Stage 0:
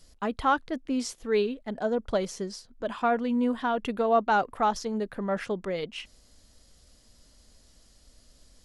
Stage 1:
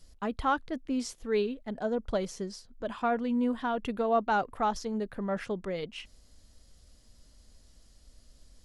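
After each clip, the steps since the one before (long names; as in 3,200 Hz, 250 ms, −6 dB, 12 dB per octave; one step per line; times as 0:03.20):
low-shelf EQ 150 Hz +6.5 dB
level −4 dB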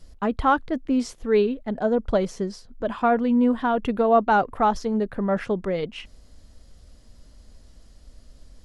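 high-shelf EQ 2,900 Hz −9 dB
level +9 dB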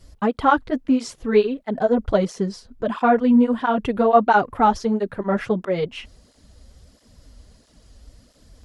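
through-zero flanger with one copy inverted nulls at 1.5 Hz, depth 7 ms
level +6 dB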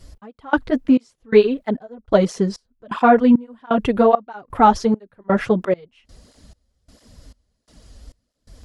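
gate pattern "xx....xxx" 170 BPM −24 dB
level +4 dB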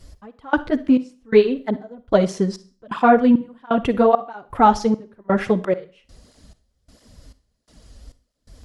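convolution reverb RT60 0.40 s, pre-delay 43 ms, DRR 15 dB
level −1 dB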